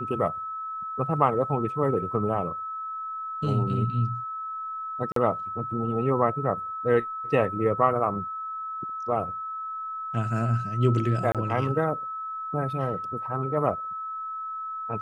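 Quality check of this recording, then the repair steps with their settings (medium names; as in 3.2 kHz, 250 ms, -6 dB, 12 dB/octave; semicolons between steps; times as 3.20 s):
whine 1.3 kHz -31 dBFS
5.12–5.16 s: dropout 43 ms
11.32–11.35 s: dropout 27 ms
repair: band-stop 1.3 kHz, Q 30; interpolate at 5.12 s, 43 ms; interpolate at 11.32 s, 27 ms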